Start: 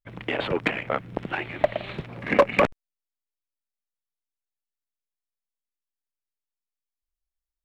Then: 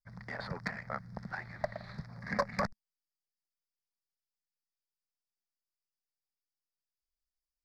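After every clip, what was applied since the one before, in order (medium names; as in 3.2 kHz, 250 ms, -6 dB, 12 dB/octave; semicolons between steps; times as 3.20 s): FFT filter 210 Hz 0 dB, 310 Hz -20 dB, 680 Hz -6 dB, 1.9 kHz -1 dB, 2.9 kHz -30 dB, 4.8 kHz +12 dB, 7.4 kHz -3 dB; trim -7 dB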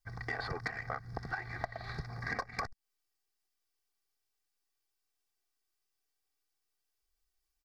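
comb 2.6 ms, depth 85%; compression 12:1, threshold -39 dBFS, peak gain reduction 16.5 dB; trim +5.5 dB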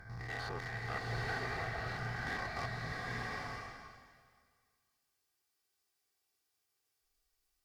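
spectrogram pixelated in time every 100 ms; one-sided clip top -41.5 dBFS; swelling reverb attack 920 ms, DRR -3 dB; trim +1 dB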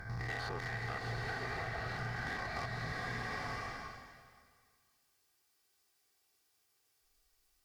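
compression 6:1, threshold -43 dBFS, peak gain reduction 9 dB; trim +6.5 dB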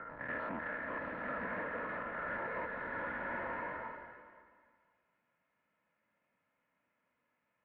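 saturation -37 dBFS, distortion -14 dB; mistuned SSB -190 Hz 310–2500 Hz; loudspeaker Doppler distortion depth 0.15 ms; trim +4.5 dB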